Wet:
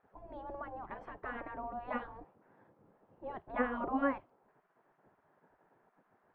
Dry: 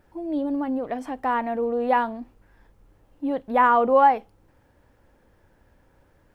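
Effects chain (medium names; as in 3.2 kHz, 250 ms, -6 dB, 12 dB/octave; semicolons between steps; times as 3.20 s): spectral gate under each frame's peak -15 dB weak; low-pass 1.1 kHz 12 dB/octave; trim +1 dB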